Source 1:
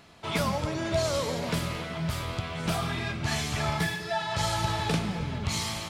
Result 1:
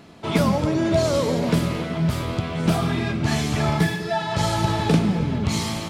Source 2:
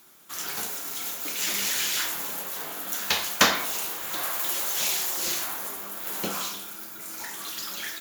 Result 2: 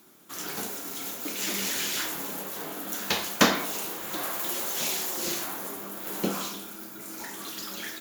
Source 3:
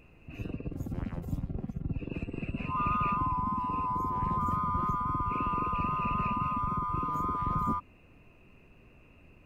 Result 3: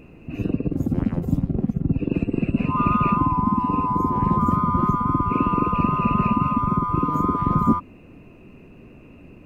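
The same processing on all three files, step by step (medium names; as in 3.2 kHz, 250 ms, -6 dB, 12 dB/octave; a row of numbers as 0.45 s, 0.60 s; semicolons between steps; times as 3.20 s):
peaking EQ 260 Hz +10.5 dB 2.3 oct; peak normalisation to -6 dBFS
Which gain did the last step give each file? +2.5 dB, -3.5 dB, +6.0 dB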